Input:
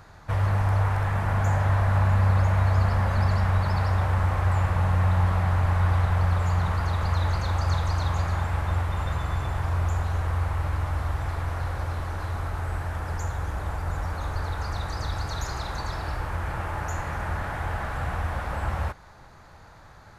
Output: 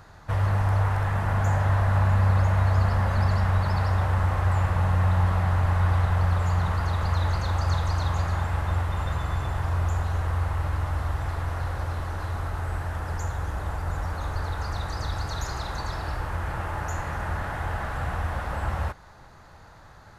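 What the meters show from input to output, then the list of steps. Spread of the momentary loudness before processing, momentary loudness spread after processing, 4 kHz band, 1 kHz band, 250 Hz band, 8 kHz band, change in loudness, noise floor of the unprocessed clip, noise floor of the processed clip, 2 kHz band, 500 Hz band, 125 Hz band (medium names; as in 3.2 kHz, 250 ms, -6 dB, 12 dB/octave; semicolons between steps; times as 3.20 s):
9 LU, 9 LU, 0.0 dB, 0.0 dB, 0.0 dB, no reading, 0.0 dB, -49 dBFS, -49 dBFS, 0.0 dB, 0.0 dB, 0.0 dB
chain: band-stop 2.3 kHz, Q 20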